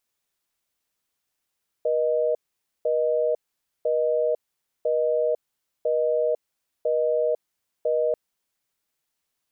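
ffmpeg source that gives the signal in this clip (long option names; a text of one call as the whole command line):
ffmpeg -f lavfi -i "aevalsrc='0.075*(sin(2*PI*480*t)+sin(2*PI*620*t))*clip(min(mod(t,1),0.5-mod(t,1))/0.005,0,1)':duration=6.29:sample_rate=44100" out.wav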